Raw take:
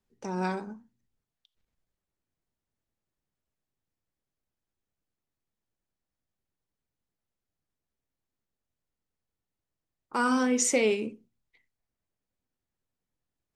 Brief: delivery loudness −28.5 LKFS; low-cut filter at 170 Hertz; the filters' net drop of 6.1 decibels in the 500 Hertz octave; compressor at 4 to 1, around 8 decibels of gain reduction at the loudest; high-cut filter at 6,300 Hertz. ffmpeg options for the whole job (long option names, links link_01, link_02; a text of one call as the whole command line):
ffmpeg -i in.wav -af "highpass=170,lowpass=6300,equalizer=frequency=500:width_type=o:gain=-7,acompressor=threshold=-33dB:ratio=4,volume=9dB" out.wav